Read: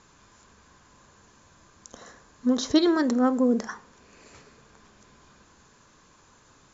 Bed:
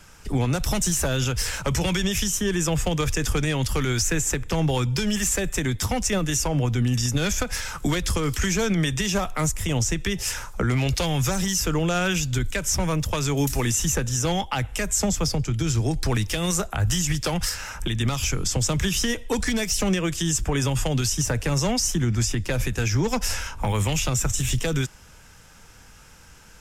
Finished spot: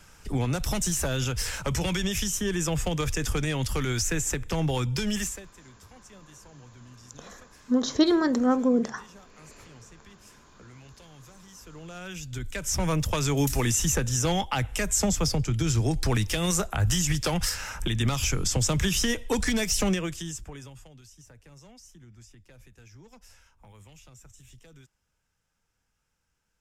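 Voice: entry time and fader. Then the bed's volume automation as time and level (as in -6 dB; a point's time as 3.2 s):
5.25 s, -0.5 dB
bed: 5.21 s -4 dB
5.53 s -27.5 dB
11.43 s -27.5 dB
12.88 s -1.5 dB
19.86 s -1.5 dB
20.95 s -28.5 dB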